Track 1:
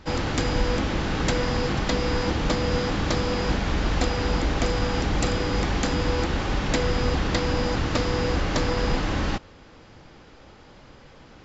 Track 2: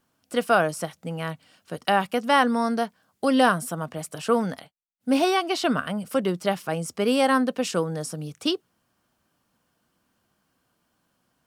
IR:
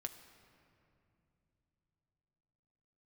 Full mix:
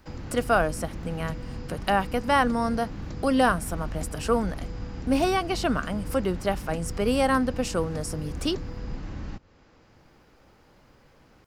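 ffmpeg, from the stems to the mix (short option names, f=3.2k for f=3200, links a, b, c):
-filter_complex "[0:a]acrossover=split=270[a][b];[b]acompressor=threshold=-38dB:ratio=4[c];[a][c]amix=inputs=2:normalize=0,volume=-8.5dB[d];[1:a]agate=range=-58dB:threshold=-54dB:ratio=16:detection=peak,acompressor=mode=upward:threshold=-26dB:ratio=2.5,volume=-2dB[e];[d][e]amix=inputs=2:normalize=0,equalizer=f=3.4k:w=2.9:g=-4.5"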